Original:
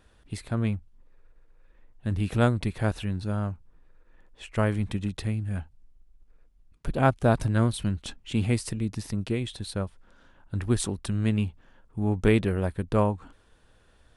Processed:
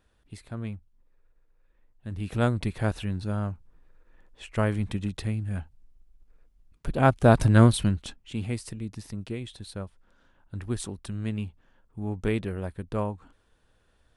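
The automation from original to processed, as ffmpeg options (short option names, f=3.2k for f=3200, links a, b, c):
-af "volume=7dB,afade=t=in:st=2.11:d=0.47:silence=0.421697,afade=t=in:st=6.93:d=0.72:silence=0.421697,afade=t=out:st=7.65:d=0.52:silence=0.223872"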